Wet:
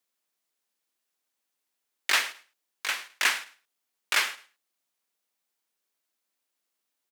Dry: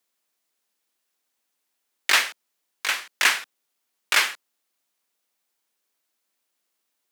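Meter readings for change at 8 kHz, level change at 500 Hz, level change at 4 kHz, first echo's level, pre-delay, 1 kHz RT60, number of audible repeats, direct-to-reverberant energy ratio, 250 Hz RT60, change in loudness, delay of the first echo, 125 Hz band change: -5.0 dB, -5.0 dB, -5.0 dB, -19.0 dB, none, none, 2, none, none, -5.0 dB, 0.106 s, n/a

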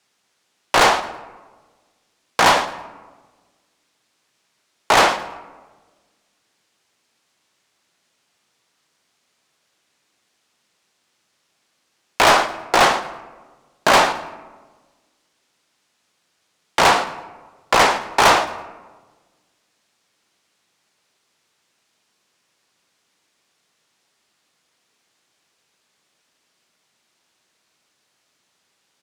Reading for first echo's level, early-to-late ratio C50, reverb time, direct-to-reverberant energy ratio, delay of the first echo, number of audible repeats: -18.0 dB, 13.0 dB, 1.4 s, 11.0 dB, 0.109 s, 2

